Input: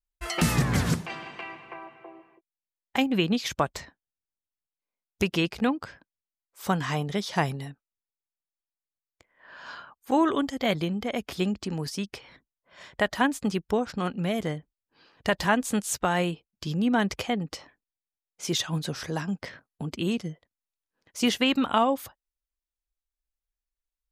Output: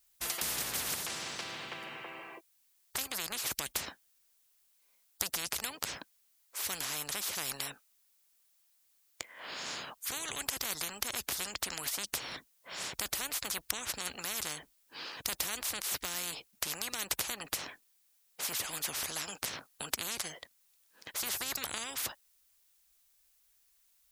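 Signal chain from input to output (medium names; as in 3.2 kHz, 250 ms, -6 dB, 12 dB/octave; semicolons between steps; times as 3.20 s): tilt EQ +3 dB/octave; spectrum-flattening compressor 10:1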